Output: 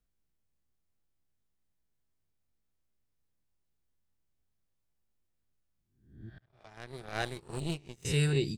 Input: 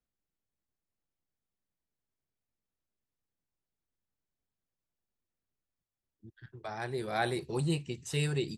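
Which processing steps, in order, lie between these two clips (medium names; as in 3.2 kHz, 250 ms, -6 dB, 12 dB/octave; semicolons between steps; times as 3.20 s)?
reverse spectral sustain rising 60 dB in 0.58 s; 6.38–8.05 s: power-law waveshaper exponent 2; bass shelf 100 Hz +12 dB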